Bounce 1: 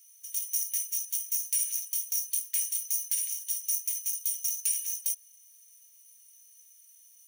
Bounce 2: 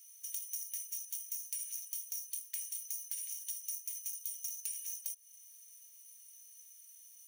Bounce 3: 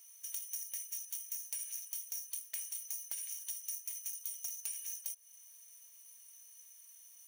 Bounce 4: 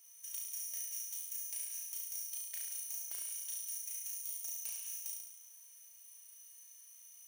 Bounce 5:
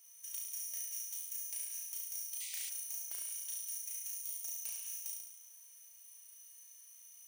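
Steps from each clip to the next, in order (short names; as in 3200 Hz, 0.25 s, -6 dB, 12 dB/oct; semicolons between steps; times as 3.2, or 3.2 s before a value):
compressor 6:1, threshold -38 dBFS, peak gain reduction 13.5 dB
bell 640 Hz +15 dB 2.3 oct; gain -1 dB
flutter echo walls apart 6 m, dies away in 1 s; gain -4 dB
painted sound noise, 2.4–2.7, 1900–9600 Hz -48 dBFS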